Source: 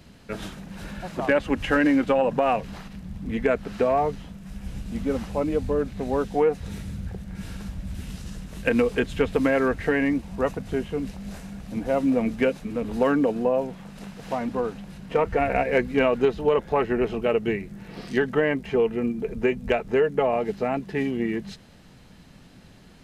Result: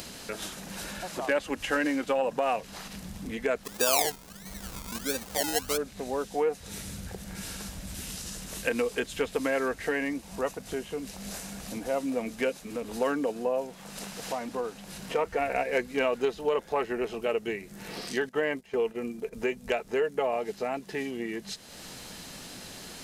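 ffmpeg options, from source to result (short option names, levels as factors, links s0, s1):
-filter_complex "[0:a]asplit=3[s0][s1][s2];[s0]afade=t=out:st=3.63:d=0.02[s3];[s1]acrusher=samples=30:mix=1:aa=0.000001:lfo=1:lforange=18:lforate=1.5,afade=t=in:st=3.63:d=0.02,afade=t=out:st=5.76:d=0.02[s4];[s2]afade=t=in:st=5.76:d=0.02[s5];[s3][s4][s5]amix=inputs=3:normalize=0,asettb=1/sr,asplit=3[s6][s7][s8];[s6]atrim=end=18.294[s9];[s7]atrim=start=18.29:end=19.33,asetpts=PTS-STARTPTS,afade=t=in:d=0.004:c=qsin,afade=t=out:st=1.036:d=0.004:c=qsin,agate=range=0.2:threshold=0.0251:ratio=16:release=100:detection=peak[s10];[s8]atrim=start=19.326[s11];[s9][s10]acrossfade=d=0.004:c1=hsin:c2=qsin[s12];[s12][s11]acrossfade=d=0.004:c1=qsin:c2=hsin,bass=f=250:g=-11,treble=f=4000:g=11,acompressor=mode=upward:threshold=0.0562:ratio=2.5,volume=0.562"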